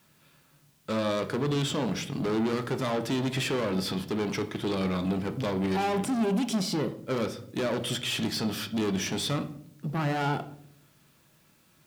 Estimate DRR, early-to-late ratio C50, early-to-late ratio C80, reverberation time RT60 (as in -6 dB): 8.0 dB, 14.0 dB, 17.5 dB, 0.65 s